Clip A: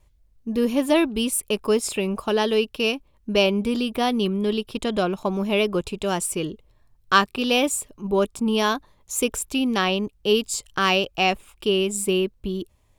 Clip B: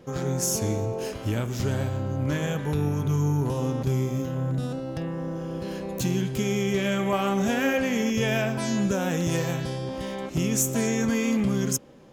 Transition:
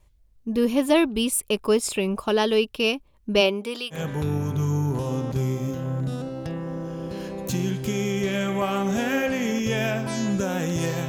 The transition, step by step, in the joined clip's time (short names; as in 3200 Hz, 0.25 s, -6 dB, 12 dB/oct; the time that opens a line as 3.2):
clip A
3.4–4.02 HPF 200 Hz -> 1200 Hz
3.96 switch to clip B from 2.47 s, crossfade 0.12 s